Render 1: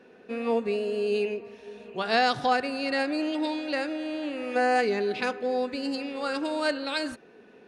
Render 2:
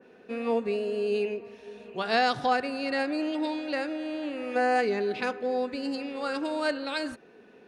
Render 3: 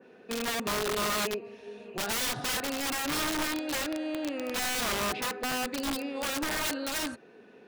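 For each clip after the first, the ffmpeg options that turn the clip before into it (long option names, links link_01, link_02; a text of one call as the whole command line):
ffmpeg -i in.wav -af "adynamicequalizer=threshold=0.00891:dfrequency=2400:dqfactor=0.7:tfrequency=2400:tqfactor=0.7:attack=5:release=100:ratio=0.375:range=1.5:mode=cutabove:tftype=highshelf,volume=-1dB" out.wav
ffmpeg -i in.wav -af "highpass=frequency=68:width=0.5412,highpass=frequency=68:width=1.3066,aeval=exprs='(mod(18.8*val(0)+1,2)-1)/18.8':channel_layout=same" out.wav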